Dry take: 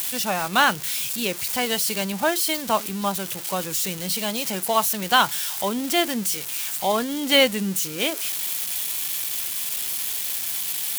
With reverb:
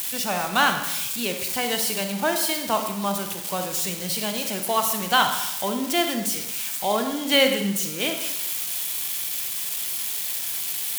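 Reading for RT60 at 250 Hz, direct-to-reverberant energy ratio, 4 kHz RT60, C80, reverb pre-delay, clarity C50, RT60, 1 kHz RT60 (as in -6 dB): 0.80 s, 5.0 dB, 0.85 s, 8.5 dB, 32 ms, 6.0 dB, 0.90 s, 0.90 s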